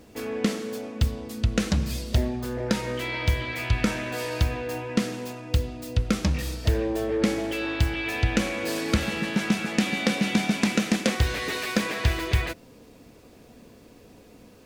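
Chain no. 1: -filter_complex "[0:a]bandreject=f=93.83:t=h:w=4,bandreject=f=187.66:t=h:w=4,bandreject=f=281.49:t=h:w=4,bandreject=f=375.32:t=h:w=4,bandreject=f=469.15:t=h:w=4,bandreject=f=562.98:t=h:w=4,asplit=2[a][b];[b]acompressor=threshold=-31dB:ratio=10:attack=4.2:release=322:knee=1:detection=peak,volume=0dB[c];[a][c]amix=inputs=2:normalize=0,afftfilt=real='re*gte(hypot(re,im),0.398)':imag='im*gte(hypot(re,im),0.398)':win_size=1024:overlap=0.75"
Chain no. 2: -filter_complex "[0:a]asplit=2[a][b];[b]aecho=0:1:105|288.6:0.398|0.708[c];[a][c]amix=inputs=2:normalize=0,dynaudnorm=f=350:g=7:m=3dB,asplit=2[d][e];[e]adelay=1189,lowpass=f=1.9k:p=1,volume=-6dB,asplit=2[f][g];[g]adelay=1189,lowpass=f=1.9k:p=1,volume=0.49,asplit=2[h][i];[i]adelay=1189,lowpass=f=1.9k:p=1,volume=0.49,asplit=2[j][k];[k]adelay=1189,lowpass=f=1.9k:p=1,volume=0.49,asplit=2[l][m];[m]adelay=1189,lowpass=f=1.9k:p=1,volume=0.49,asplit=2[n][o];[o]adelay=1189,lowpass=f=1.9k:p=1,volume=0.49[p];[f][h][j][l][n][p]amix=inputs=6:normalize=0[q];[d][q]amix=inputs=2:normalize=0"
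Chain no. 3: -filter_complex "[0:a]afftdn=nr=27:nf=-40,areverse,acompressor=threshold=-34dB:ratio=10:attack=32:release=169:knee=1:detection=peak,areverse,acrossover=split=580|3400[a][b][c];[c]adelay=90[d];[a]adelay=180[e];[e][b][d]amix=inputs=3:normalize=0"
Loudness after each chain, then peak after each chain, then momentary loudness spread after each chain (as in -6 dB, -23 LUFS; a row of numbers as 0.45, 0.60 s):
-28.0, -21.5, -37.0 LUFS; -10.0, -3.5, -23.0 dBFS; 7, 8, 3 LU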